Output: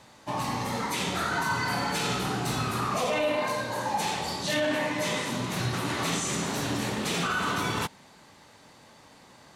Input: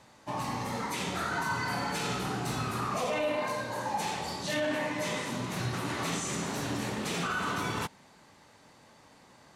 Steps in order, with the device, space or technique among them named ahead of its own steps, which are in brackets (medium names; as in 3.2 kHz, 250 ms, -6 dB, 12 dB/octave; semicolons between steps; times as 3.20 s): presence and air boost (peaking EQ 3.6 kHz +2.5 dB; treble shelf 11 kHz +3.5 dB); trim +3.5 dB